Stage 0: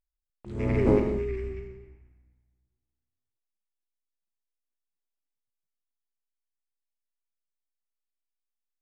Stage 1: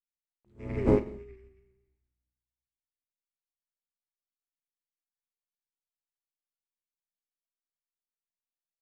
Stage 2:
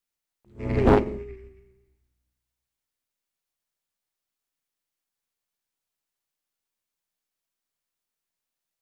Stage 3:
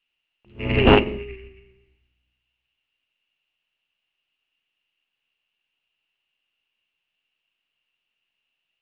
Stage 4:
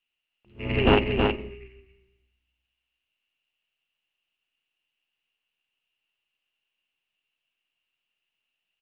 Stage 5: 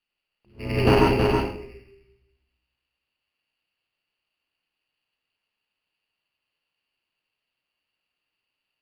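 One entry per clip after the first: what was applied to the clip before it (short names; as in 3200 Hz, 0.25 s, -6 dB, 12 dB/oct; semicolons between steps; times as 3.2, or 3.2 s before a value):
upward expander 2.5:1, over -35 dBFS
self-modulated delay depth 0.57 ms; maximiser +14.5 dB; gain -5.5 dB
synth low-pass 2800 Hz, resonance Q 15; gain +3 dB
echo 0.322 s -4.5 dB; gain -5 dB
reverb RT60 0.55 s, pre-delay 87 ms, DRR -0.5 dB; decimation joined by straight lines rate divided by 6×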